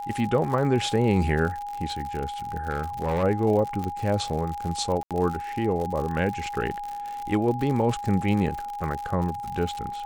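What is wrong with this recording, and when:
crackle 81/s -30 dBFS
tone 820 Hz -31 dBFS
2.7–3.24 clipped -21 dBFS
3.84 pop -18 dBFS
5.03–5.11 gap 77 ms

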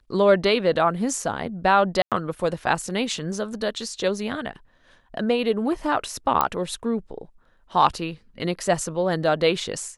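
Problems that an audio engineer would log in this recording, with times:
2.02–2.12 gap 97 ms
6.41 pop -5 dBFS

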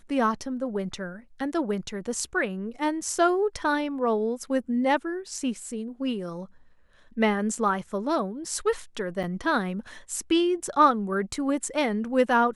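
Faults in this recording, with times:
9.23–9.24 gap 5.8 ms

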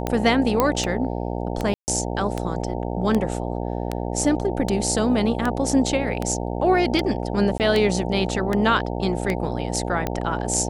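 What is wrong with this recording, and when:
buzz 60 Hz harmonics 15 -27 dBFS
tick 78 rpm -10 dBFS
0.6 pop -5 dBFS
1.74–1.88 gap 0.139 s
7.58–7.6 gap 18 ms

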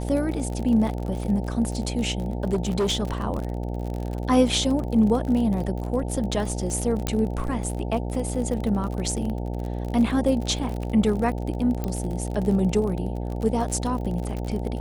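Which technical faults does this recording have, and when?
buzz 60 Hz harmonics 15 -29 dBFS
crackle 41/s -29 dBFS
2.53–3.03 clipped -19 dBFS
7.07 pop -10 dBFS
11.84 pop -15 dBFS

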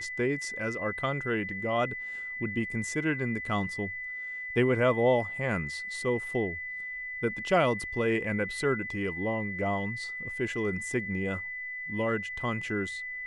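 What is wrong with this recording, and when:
tone 2000 Hz -35 dBFS

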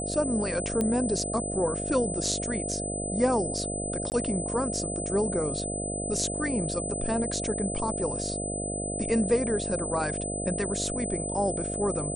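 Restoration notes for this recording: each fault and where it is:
buzz 50 Hz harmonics 14 -34 dBFS
tone 8100 Hz -33 dBFS
0.81 pop -15 dBFS
4.1–4.12 gap 19 ms

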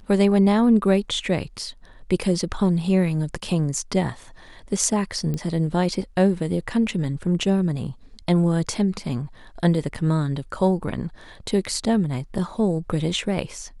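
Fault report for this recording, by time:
5.34 pop -16 dBFS

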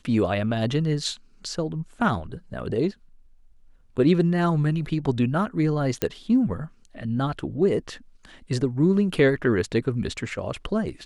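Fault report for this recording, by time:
6.02 pop -9 dBFS

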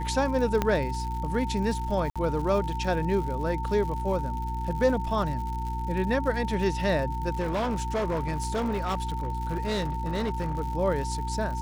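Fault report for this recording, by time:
crackle 140/s -35 dBFS
hum 60 Hz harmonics 6 -32 dBFS
tone 900 Hz -33 dBFS
0.62 pop -11 dBFS
2.1–2.16 gap 56 ms
7.39–10.61 clipped -24 dBFS

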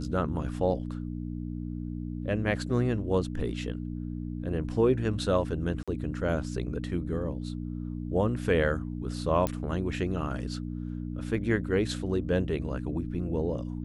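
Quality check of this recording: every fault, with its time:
hum 60 Hz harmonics 5 -35 dBFS
5.83–5.88 gap 46 ms
9.47 pop -14 dBFS

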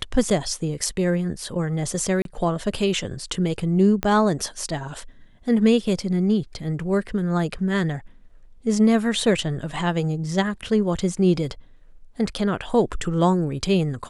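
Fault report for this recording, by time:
2.22–2.25 gap 32 ms
4.03 pop -9 dBFS

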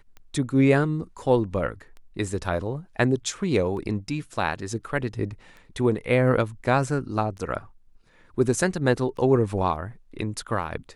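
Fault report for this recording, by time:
tick 33 1/3 rpm -30 dBFS

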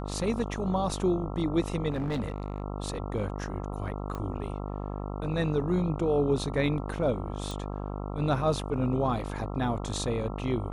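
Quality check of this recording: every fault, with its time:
buzz 50 Hz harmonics 27 -35 dBFS
1.9–2.62 clipped -26.5 dBFS
4.15 pop -23 dBFS
7.51 pop

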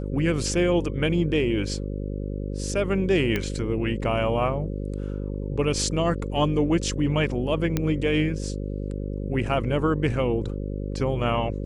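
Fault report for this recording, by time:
buzz 50 Hz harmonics 11 -30 dBFS
3.36 pop -12 dBFS
7.77 pop -10 dBFS

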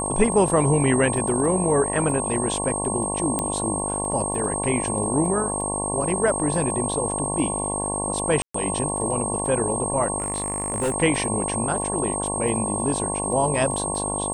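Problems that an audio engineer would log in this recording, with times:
buzz 50 Hz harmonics 22 -29 dBFS
crackle 19/s -32 dBFS
tone 8500 Hz -27 dBFS
3.39 pop -9 dBFS
8.42–8.54 gap 0.124 s
10.18–10.94 clipped -19.5 dBFS

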